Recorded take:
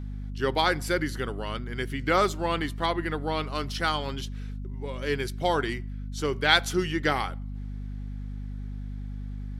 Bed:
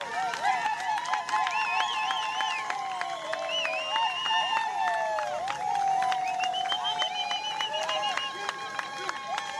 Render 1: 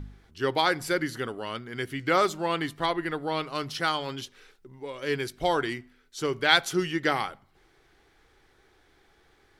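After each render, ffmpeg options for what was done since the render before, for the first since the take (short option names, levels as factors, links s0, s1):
-af "bandreject=f=50:t=h:w=4,bandreject=f=100:t=h:w=4,bandreject=f=150:t=h:w=4,bandreject=f=200:t=h:w=4,bandreject=f=250:t=h:w=4"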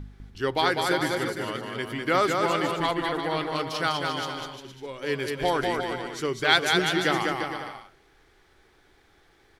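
-af "aecho=1:1:200|350|462.5|546.9|610.2:0.631|0.398|0.251|0.158|0.1"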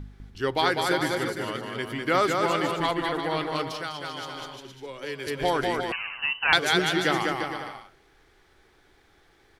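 -filter_complex "[0:a]asettb=1/sr,asplit=3[s0][s1][s2];[s0]atrim=end=3.714[s3];[s1]atrim=start=3.71:end=5.27,asetpts=PTS-STARTPTS,afade=t=in:d=0.004:c=qsin,afade=t=out:st=1.556:d=0.004:c=qsin,acrossover=split=110|290|2400[s4][s5][s6][s7];[s4]acompressor=threshold=0.00178:ratio=3[s8];[s5]acompressor=threshold=0.00251:ratio=3[s9];[s6]acompressor=threshold=0.0178:ratio=3[s10];[s7]acompressor=threshold=0.01:ratio=3[s11];[s8][s9][s10][s11]amix=inputs=4:normalize=0[s12];[s2]atrim=start=5.266[s13];[s3][s12]acrossfade=d=0.004:c1=hsin:c2=qsin[s14];[s14][s13]acrossfade=d=0.004:c1=qsin:c2=hsin,asettb=1/sr,asplit=3[s15][s16][s17];[s15]atrim=end=5.924[s18];[s16]atrim=start=5.92:end=6.53,asetpts=PTS-STARTPTS,afade=t=in:d=0.004:c=qsin,afade=t=out:st=0.606:d=0.004:c=qsin,lowpass=f=2600:t=q:w=0.5098,lowpass=f=2600:t=q:w=0.6013,lowpass=f=2600:t=q:w=0.9,lowpass=f=2600:t=q:w=2.563,afreqshift=-3100[s19];[s17]atrim=start=6.526[s20];[s18][s19]acrossfade=d=0.004:c1=hsin:c2=qsin[s21];[s21][s20]acrossfade=d=0.004:c1=qsin:c2=hsin"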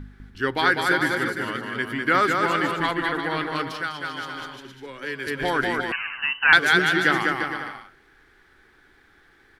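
-af "equalizer=f=250:t=o:w=0.67:g=5,equalizer=f=630:t=o:w=0.67:g=-4,equalizer=f=1600:t=o:w=0.67:g=10,equalizer=f=6300:t=o:w=0.67:g=-3"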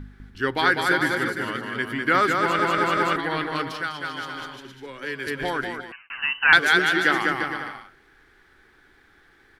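-filter_complex "[0:a]asettb=1/sr,asplit=3[s0][s1][s2];[s0]atrim=end=6.624[s3];[s1]atrim=start=6.62:end=7.24,asetpts=PTS-STARTPTS,afade=t=in:d=0.004:c=qsin,afade=t=out:st=0.616:d=0.004:c=qsin,equalizer=f=140:w=1.5:g=-8[s4];[s2]atrim=start=7.236[s5];[s3][s4]acrossfade=d=0.004:c1=hsin:c2=qsin[s6];[s6][s5]acrossfade=d=0.004:c1=qsin:c2=hsin,asplit=6[s7][s8][s9][s10][s11][s12];[s7]atrim=end=2.592[s13];[s8]atrim=start=2.398:end=2.592[s14];[s9]atrim=start=2.398:end=2.592[s15];[s10]atrim=start=2.398:end=2.592[s16];[s11]atrim=start=3.158:end=6.1,asetpts=PTS-STARTPTS,afade=t=out:st=2.112:d=0.83[s17];[s12]atrim=start=6.1,asetpts=PTS-STARTPTS,afade=t=in:d=0.004:c=hsin[s18];[s13][s14]acrossfade=d=0.004:c1=hsin:c2=hsin[s19];[s19][s15]acrossfade=d=0.004:c1=hsin:c2=hsin[s20];[s20][s16]acrossfade=d=0.004:c1=hsin:c2=hsin[s21];[s17][s18]concat=n=2:v=0:a=1[s22];[s21][s22]acrossfade=d=0.004:c1=hsin:c2=hsin"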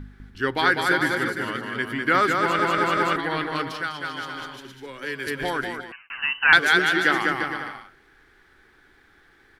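-filter_complex "[0:a]asettb=1/sr,asplit=3[s0][s1][s2];[s0]atrim=end=4.544[s3];[s1]atrim=start=4.54:end=5.84,asetpts=PTS-STARTPTS,afade=t=in:d=0.004:c=qsin,afade=t=out:st=1.296:d=0.004:c=qsin,highshelf=f=7200:g=5.5[s4];[s2]atrim=start=5.836[s5];[s3][s4]acrossfade=d=0.004:c1=hsin:c2=qsin[s6];[s6][s5]acrossfade=d=0.004:c1=qsin:c2=hsin"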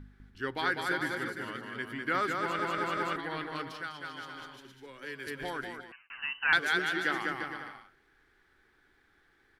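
-af "volume=0.299"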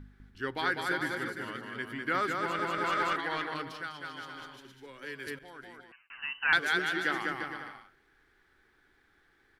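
-filter_complex "[0:a]asettb=1/sr,asplit=3[s0][s1][s2];[s0]atrim=end=2.844[s3];[s1]atrim=start=2.84:end=3.54,asetpts=PTS-STARTPTS,afade=t=in:d=0.004:c=qsin,afade=t=out:st=0.696:d=0.004:c=qsin,asplit=2[s4][s5];[s5]highpass=f=720:p=1,volume=3.16,asoftclip=type=tanh:threshold=0.112[s6];[s4][s6]amix=inputs=2:normalize=0,lowpass=f=8000:p=1,volume=0.501[s7];[s2]atrim=start=3.536[s8];[s3][s7]acrossfade=d=0.004:c1=hsin:c2=qsin[s9];[s9][s8]acrossfade=d=0.004:c1=qsin:c2=hsin,asplit=2[s10][s11];[s10]atrim=end=5.39,asetpts=PTS-STARTPTS,afade=t=out:st=5.386:d=0.004:c=hsin:silence=0.141254[s12];[s11]atrim=start=5.39,asetpts=PTS-STARTPTS,afade=t=in:d=1.06:silence=0.141254[s13];[s12][s13]concat=n=2:v=0:a=1"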